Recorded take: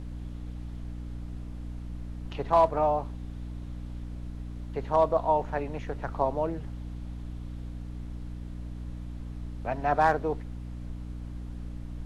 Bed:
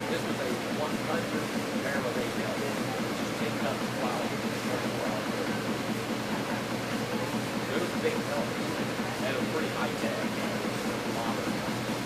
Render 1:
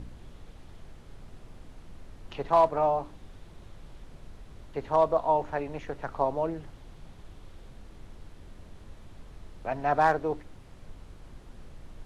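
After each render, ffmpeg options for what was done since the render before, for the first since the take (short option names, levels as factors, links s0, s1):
-af "bandreject=f=60:t=h:w=4,bandreject=f=120:t=h:w=4,bandreject=f=180:t=h:w=4,bandreject=f=240:t=h:w=4,bandreject=f=300:t=h:w=4"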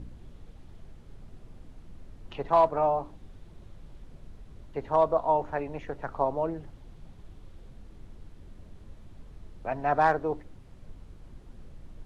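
-af "afftdn=nr=6:nf=-50"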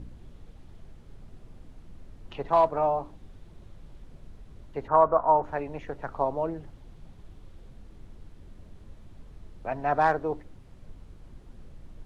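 -filter_complex "[0:a]asplit=3[s0][s1][s2];[s0]afade=t=out:st=4.87:d=0.02[s3];[s1]lowpass=f=1400:t=q:w=3.4,afade=t=in:st=4.87:d=0.02,afade=t=out:st=5.42:d=0.02[s4];[s2]afade=t=in:st=5.42:d=0.02[s5];[s3][s4][s5]amix=inputs=3:normalize=0"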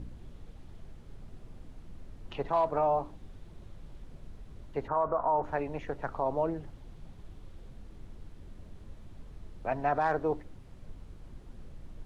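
-af "alimiter=limit=0.112:level=0:latency=1:release=42"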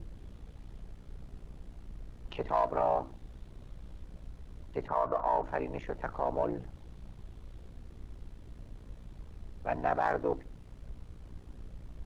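-filter_complex "[0:a]asplit=2[s0][s1];[s1]aeval=exprs='clip(val(0),-1,0.0141)':c=same,volume=0.299[s2];[s0][s2]amix=inputs=2:normalize=0,aeval=exprs='val(0)*sin(2*PI*30*n/s)':c=same"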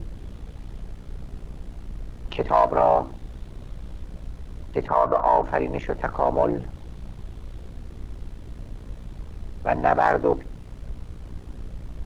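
-af "volume=3.35"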